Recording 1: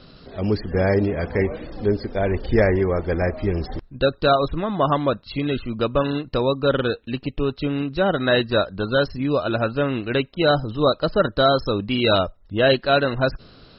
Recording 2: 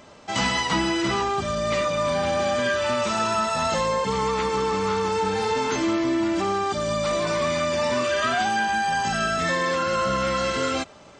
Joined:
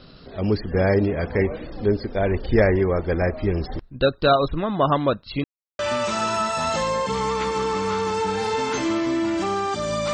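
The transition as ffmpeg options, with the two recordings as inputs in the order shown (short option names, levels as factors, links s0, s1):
-filter_complex "[0:a]apad=whole_dur=10.13,atrim=end=10.13,asplit=2[s0][s1];[s0]atrim=end=5.44,asetpts=PTS-STARTPTS,afade=t=out:st=5.436:d=0.004:c=hsin[s2];[s1]atrim=start=5.44:end=5.79,asetpts=PTS-STARTPTS,volume=0[s3];[1:a]atrim=start=2.77:end=7.11,asetpts=PTS-STARTPTS,afade=t=in:d=0.004:c=hsin[s4];[s2][s3][s4]concat=n=3:v=0:a=1"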